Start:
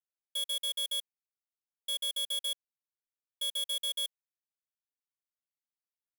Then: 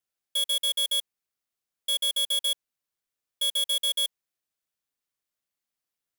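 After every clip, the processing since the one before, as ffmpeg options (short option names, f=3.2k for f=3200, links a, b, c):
-af "bandreject=f=910:w=14,volume=7.5dB"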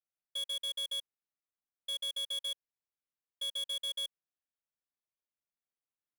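-af "adynamicsmooth=sensitivity=3.5:basefreq=3.2k,volume=-9dB"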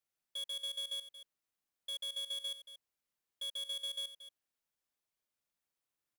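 -af "alimiter=level_in=18.5dB:limit=-24dB:level=0:latency=1,volume=-18.5dB,aecho=1:1:229:0.237,volume=4.5dB"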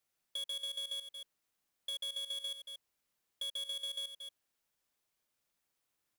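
-af "acompressor=threshold=-45dB:ratio=6,volume=6dB"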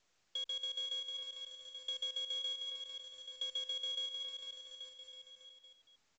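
-af "afreqshift=-36,aecho=1:1:450|832.5|1158|1434|1669:0.631|0.398|0.251|0.158|0.1" -ar 16000 -c:a pcm_mulaw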